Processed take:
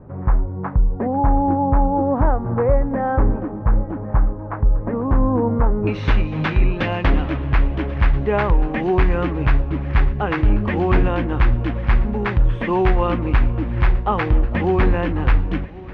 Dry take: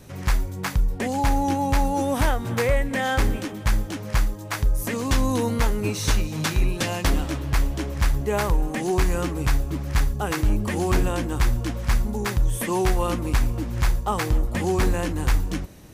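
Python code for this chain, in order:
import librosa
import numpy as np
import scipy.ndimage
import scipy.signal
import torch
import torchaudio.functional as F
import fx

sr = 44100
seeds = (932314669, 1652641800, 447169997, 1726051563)

y = fx.lowpass(x, sr, hz=fx.steps((0.0, 1200.0), (5.87, 2800.0)), slope=24)
y = fx.echo_feedback(y, sr, ms=1088, feedback_pct=55, wet_db=-20)
y = y * librosa.db_to_amplitude(5.0)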